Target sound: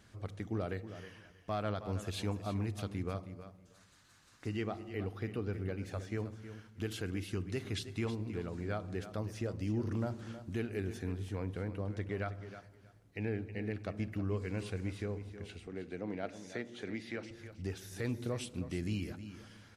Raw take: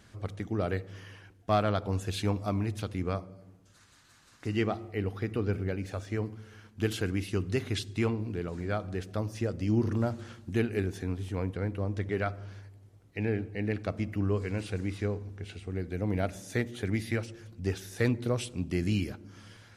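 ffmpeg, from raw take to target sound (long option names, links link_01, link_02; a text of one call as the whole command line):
ffmpeg -i in.wav -filter_complex "[0:a]alimiter=limit=-22.5dB:level=0:latency=1:release=175,asettb=1/sr,asplit=3[link_01][link_02][link_03];[link_01]atrim=end=15.674[link_04];[link_02]atrim=start=15.67:end=17.31,asetpts=PTS-STARTPTS,afade=type=in:duration=0.004:curve=qsin,afade=type=out:start_time=1.636:duration=0.004:curve=qsin,highpass=210,lowpass=5500[link_05];[link_03]atrim=start=17.306[link_06];[link_04][link_05]acrossfade=duration=0.004:curve1=hsin:curve2=qsin[link_07];[link_07][link_06]acrossfade=duration=0.004:curve1=qsin:curve2=hsin,aecho=1:1:318|636:0.251|0.0427,volume=-4.5dB" out.wav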